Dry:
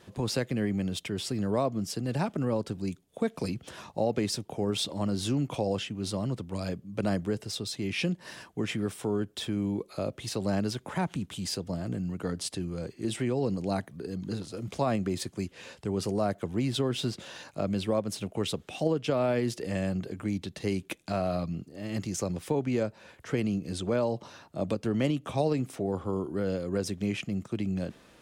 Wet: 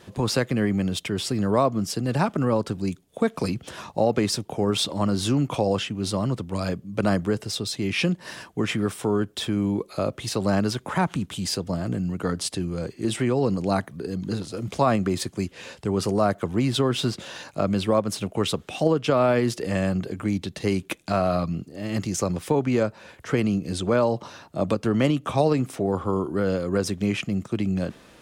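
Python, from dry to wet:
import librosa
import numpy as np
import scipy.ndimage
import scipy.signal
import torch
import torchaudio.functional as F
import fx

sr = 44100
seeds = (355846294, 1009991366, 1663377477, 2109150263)

y = fx.dynamic_eq(x, sr, hz=1200.0, q=1.8, threshold_db=-49.0, ratio=4.0, max_db=6)
y = y * 10.0 ** (6.0 / 20.0)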